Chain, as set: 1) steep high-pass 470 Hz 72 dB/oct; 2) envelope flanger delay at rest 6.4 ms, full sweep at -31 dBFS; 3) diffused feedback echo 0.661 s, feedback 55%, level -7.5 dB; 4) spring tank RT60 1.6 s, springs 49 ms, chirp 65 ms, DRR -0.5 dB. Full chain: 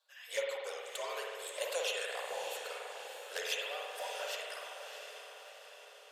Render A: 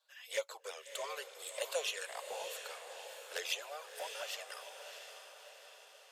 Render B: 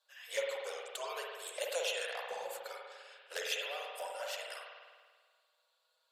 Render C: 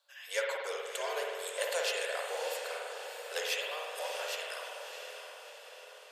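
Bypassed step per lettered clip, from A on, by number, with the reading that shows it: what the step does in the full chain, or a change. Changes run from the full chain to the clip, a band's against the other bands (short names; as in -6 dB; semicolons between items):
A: 4, crest factor change +2.5 dB; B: 3, echo-to-direct 2.0 dB to 0.5 dB; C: 2, loudness change +3.0 LU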